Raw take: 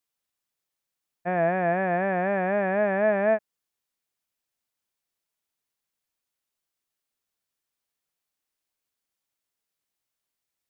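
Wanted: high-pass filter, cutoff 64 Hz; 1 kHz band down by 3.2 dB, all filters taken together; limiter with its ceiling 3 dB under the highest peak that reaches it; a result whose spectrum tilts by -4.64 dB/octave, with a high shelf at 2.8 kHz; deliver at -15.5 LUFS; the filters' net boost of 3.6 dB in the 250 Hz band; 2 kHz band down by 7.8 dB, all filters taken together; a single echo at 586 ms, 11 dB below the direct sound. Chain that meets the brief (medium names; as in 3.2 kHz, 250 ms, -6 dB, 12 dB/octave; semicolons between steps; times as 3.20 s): high-pass 64 Hz; peaking EQ 250 Hz +6 dB; peaking EQ 1 kHz -4.5 dB; peaking EQ 2 kHz -6 dB; treble shelf 2.8 kHz -6 dB; peak limiter -17 dBFS; delay 586 ms -11 dB; trim +11 dB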